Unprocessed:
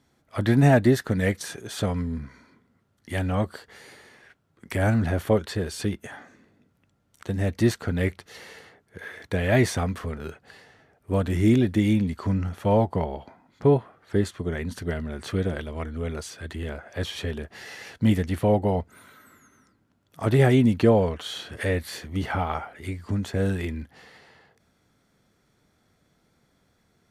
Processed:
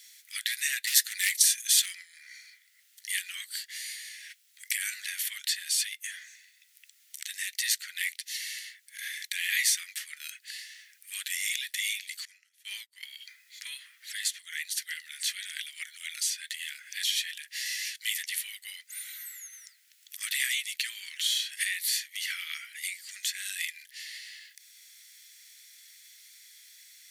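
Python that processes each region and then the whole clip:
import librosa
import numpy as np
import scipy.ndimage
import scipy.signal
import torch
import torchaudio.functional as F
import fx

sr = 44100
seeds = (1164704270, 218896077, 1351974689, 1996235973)

y = fx.chain(x, sr, fx.clip_hard(threshold_db=-18.5),
    fx.high_shelf(hz=2300.0, db=9.0), at=(0.87, 1.95))
y = fx.chain(y, sr, fx.highpass(hz=430.0, slope=6),
    fx.upward_expand(threshold_db=-42.0, expansion=2.5), at=(12.25, 13.03))
y = scipy.signal.sosfilt(scipy.signal.ellip(4, 1.0, 60, 1900.0, 'highpass', fs=sr, output='sos'), y)
y = fx.tilt_eq(y, sr, slope=4.5)
y = fx.band_squash(y, sr, depth_pct=40)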